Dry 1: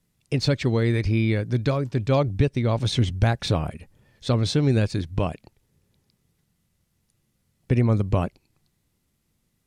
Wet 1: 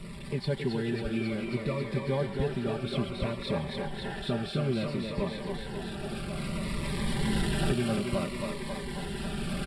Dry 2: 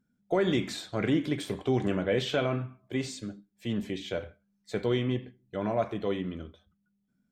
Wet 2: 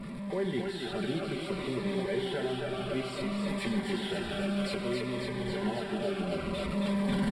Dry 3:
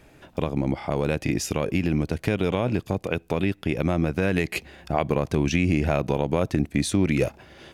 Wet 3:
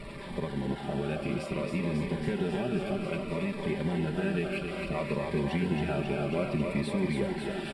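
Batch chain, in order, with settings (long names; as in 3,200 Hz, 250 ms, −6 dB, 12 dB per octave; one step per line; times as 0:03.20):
linear delta modulator 64 kbit/s, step −27.5 dBFS
camcorder AGC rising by 7.1 dB per second
harmonic and percussive parts rebalanced harmonic −3 dB
comb filter 5.1 ms, depth 77%
soft clipping −8.5 dBFS
moving average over 7 samples
on a send: feedback echo with a high-pass in the loop 272 ms, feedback 80%, high-pass 190 Hz, level −4 dB
on the sum: phaser whose notches keep moving one way falling 0.6 Hz
level −7 dB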